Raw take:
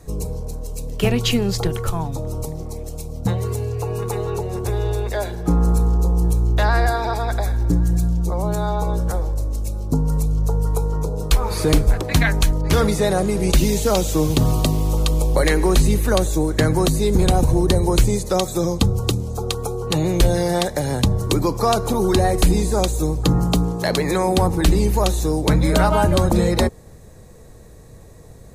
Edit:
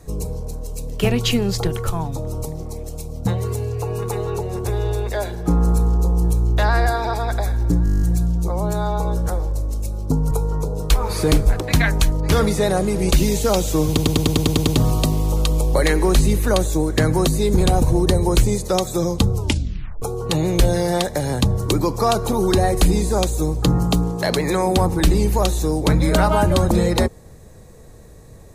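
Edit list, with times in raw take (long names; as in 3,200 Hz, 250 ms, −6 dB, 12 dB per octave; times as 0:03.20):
0:07.84: stutter 0.02 s, 10 plays
0:10.13–0:10.72: remove
0:14.28: stutter 0.10 s, 9 plays
0:18.95: tape stop 0.68 s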